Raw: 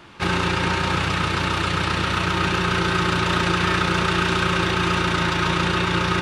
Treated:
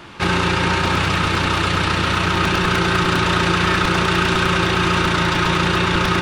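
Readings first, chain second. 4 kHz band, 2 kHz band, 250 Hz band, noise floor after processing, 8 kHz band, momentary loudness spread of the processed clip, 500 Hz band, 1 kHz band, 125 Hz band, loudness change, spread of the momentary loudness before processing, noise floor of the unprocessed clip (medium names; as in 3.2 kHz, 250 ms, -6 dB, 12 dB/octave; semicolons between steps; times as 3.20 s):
+3.5 dB, +3.5 dB, +3.5 dB, -20 dBFS, +4.0 dB, 1 LU, +3.5 dB, +3.5 dB, +3.5 dB, +3.5 dB, 2 LU, -24 dBFS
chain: in parallel at +1 dB: peak limiter -19.5 dBFS, peak gain reduction 11 dB; on the sum: crackling interface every 0.10 s, samples 128, repeat, from 0.85 s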